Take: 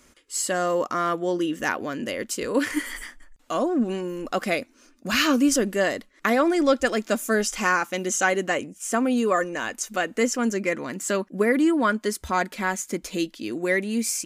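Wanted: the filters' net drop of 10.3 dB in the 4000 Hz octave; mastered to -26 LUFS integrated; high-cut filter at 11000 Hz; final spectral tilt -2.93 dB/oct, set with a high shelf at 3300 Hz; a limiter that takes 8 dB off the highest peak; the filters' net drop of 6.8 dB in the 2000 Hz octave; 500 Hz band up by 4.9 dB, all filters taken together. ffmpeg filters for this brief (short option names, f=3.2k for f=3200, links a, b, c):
-af "lowpass=11k,equalizer=f=500:t=o:g=6.5,equalizer=f=2k:t=o:g=-6.5,highshelf=f=3.3k:g=-5.5,equalizer=f=4k:t=o:g=-8,volume=-2dB,alimiter=limit=-15dB:level=0:latency=1"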